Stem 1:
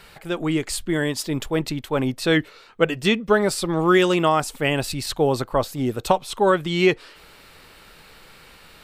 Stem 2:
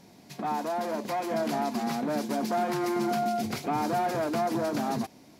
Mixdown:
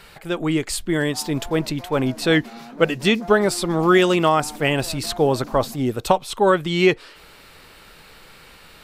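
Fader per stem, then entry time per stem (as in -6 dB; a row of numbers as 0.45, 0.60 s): +1.5, -9.5 dB; 0.00, 0.70 s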